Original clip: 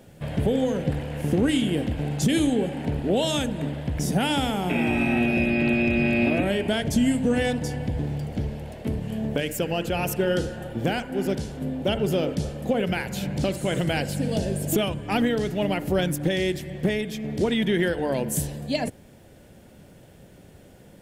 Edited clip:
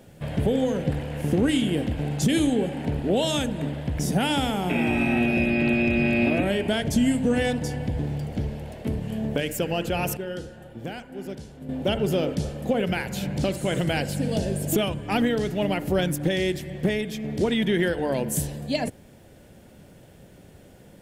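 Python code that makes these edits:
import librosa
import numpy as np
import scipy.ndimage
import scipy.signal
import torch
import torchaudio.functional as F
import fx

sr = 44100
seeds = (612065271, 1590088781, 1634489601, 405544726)

y = fx.edit(x, sr, fx.clip_gain(start_s=10.17, length_s=1.52, db=-9.5), tone=tone)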